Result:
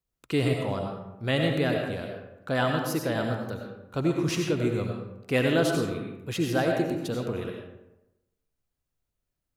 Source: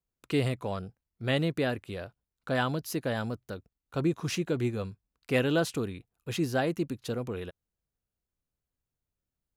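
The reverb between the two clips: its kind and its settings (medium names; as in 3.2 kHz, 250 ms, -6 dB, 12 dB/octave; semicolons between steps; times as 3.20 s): algorithmic reverb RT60 0.95 s, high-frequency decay 0.55×, pre-delay 50 ms, DRR 1.5 dB; trim +1.5 dB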